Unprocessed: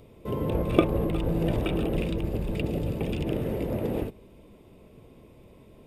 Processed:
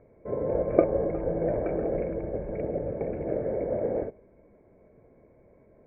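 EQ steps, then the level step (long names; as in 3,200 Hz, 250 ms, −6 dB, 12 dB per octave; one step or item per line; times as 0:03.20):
dynamic equaliser 550 Hz, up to +7 dB, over −42 dBFS, Q 1.2
Chebyshev low-pass with heavy ripple 2,300 Hz, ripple 9 dB
0.0 dB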